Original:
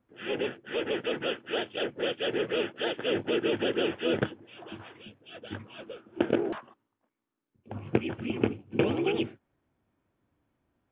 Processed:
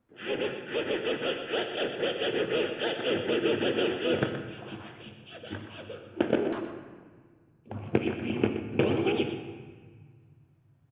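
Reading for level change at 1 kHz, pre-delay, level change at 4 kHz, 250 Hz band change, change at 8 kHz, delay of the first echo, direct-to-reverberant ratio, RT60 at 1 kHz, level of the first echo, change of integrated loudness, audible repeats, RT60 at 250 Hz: +1.0 dB, 13 ms, +1.0 dB, +1.0 dB, no reading, 123 ms, 5.0 dB, 1.7 s, -10.0 dB, +0.5 dB, 1, 2.8 s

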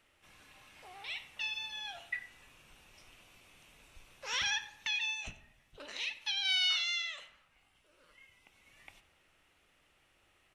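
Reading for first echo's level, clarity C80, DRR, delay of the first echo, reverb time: -18.5 dB, 14.5 dB, 10.0 dB, 93 ms, 0.90 s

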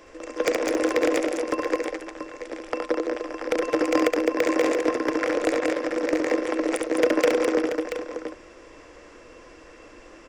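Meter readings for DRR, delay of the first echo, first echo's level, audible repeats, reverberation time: no reverb, 69 ms, -4.5 dB, 4, no reverb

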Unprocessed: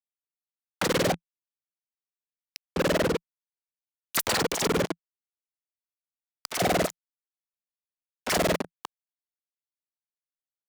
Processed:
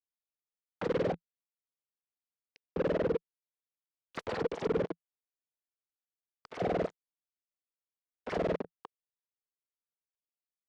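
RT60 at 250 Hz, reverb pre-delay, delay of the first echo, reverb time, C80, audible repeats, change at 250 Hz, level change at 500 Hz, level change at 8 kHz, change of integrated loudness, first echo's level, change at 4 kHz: no reverb, no reverb, no echo, no reverb, no reverb, no echo, -7.0 dB, -4.0 dB, under -25 dB, -7.5 dB, no echo, -19.0 dB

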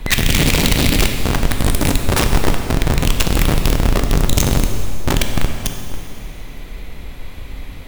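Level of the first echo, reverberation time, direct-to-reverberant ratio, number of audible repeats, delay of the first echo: no echo, 2.7 s, 4.0 dB, no echo, no echo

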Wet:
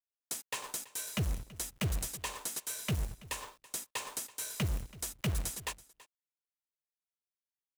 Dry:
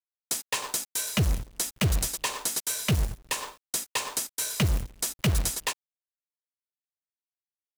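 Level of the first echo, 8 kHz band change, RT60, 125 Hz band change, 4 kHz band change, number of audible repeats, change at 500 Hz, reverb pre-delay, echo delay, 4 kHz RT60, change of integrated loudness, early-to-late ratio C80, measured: -20.0 dB, -9.0 dB, no reverb, -8.5 dB, -10.0 dB, 1, -8.5 dB, no reverb, 330 ms, no reverb, -9.0 dB, no reverb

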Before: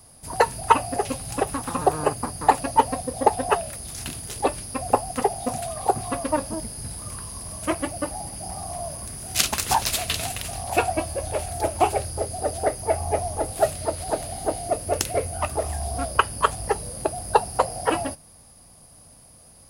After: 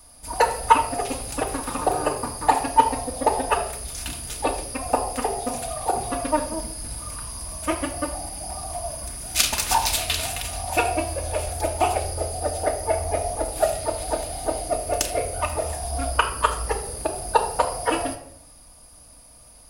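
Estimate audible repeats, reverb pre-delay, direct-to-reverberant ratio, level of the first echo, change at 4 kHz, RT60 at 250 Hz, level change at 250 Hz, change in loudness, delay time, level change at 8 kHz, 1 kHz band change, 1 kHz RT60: no echo, 3 ms, 1.0 dB, no echo, +2.0 dB, 0.95 s, -0.5 dB, +0.5 dB, no echo, +1.5 dB, +0.5 dB, 0.60 s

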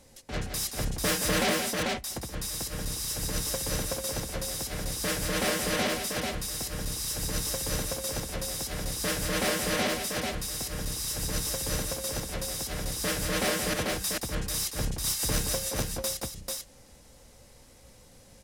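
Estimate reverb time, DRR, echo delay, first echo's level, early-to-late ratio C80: no reverb, no reverb, 174 ms, -7.0 dB, no reverb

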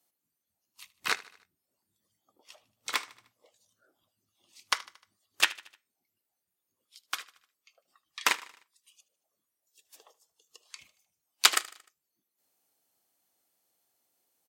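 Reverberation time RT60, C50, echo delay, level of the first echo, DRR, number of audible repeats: no reverb, no reverb, 76 ms, -20.0 dB, no reverb, 3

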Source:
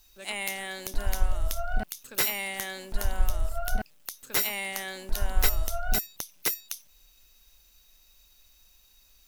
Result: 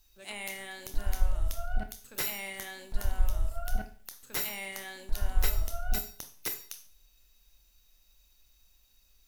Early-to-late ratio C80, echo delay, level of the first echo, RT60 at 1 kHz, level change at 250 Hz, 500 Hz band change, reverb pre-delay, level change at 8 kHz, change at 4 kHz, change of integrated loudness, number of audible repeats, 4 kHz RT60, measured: 16.0 dB, no echo, no echo, 0.45 s, -4.5 dB, -6.5 dB, 21 ms, -6.5 dB, -6.5 dB, -5.0 dB, no echo, 0.45 s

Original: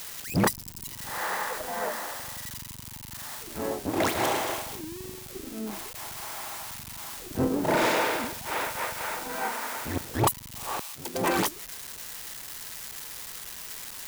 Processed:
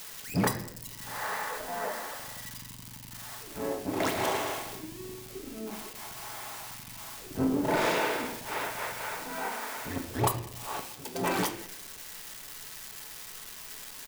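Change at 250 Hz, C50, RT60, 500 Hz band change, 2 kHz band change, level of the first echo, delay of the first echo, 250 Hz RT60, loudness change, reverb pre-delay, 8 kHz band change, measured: -2.0 dB, 10.0 dB, 0.70 s, -2.5 dB, -3.0 dB, -24.5 dB, 204 ms, 0.85 s, -3.0 dB, 5 ms, -4.0 dB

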